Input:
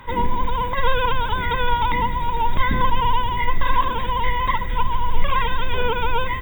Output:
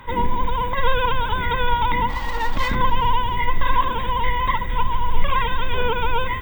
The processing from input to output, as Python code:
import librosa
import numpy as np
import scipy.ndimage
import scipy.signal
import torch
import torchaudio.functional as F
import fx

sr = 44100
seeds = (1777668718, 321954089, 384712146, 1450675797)

y = fx.lower_of_two(x, sr, delay_ms=3.6, at=(2.08, 2.74), fade=0.02)
y = fx.echo_heads(y, sr, ms=135, heads='second and third', feedback_pct=53, wet_db=-23)